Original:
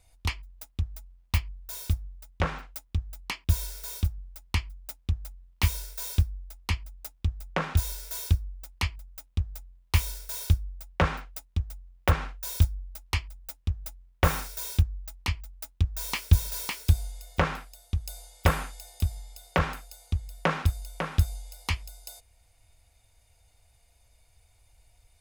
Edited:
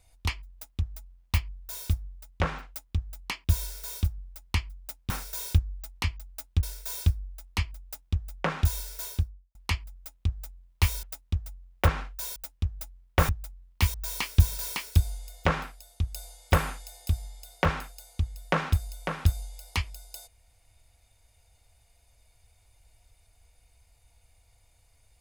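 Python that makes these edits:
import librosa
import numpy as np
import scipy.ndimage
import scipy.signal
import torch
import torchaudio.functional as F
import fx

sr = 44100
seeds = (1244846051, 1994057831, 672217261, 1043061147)

y = fx.studio_fade_out(x, sr, start_s=8.08, length_s=0.59)
y = fx.edit(y, sr, fx.swap(start_s=5.1, length_s=0.65, other_s=14.34, other_length_s=1.53),
    fx.cut(start_s=10.15, length_s=1.12),
    fx.cut(start_s=12.6, length_s=0.81), tone=tone)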